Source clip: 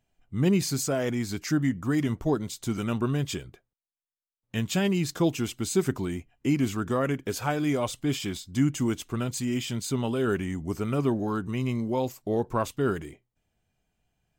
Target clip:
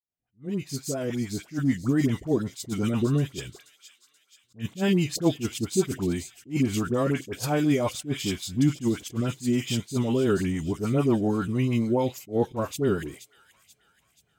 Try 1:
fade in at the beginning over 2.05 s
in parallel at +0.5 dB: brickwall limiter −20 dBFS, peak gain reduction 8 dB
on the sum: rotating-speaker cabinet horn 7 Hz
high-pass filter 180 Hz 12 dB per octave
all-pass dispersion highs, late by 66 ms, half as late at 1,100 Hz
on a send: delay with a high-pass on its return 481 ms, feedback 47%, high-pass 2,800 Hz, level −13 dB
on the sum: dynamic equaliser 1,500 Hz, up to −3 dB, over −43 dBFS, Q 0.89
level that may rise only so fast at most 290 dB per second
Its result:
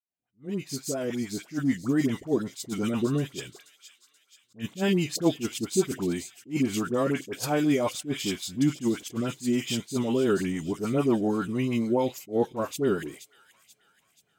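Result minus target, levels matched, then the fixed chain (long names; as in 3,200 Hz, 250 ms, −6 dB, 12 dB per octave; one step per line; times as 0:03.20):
125 Hz band −4.5 dB
fade in at the beginning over 2.05 s
in parallel at +0.5 dB: brickwall limiter −20 dBFS, peak gain reduction 8 dB
on the sum: rotating-speaker cabinet horn 7 Hz
high-pass filter 74 Hz 12 dB per octave
all-pass dispersion highs, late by 66 ms, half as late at 1,100 Hz
on a send: delay with a high-pass on its return 481 ms, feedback 47%, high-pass 2,800 Hz, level −13 dB
on the sum: dynamic equaliser 1,500 Hz, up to −3 dB, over −43 dBFS, Q 0.89
level that may rise only so fast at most 290 dB per second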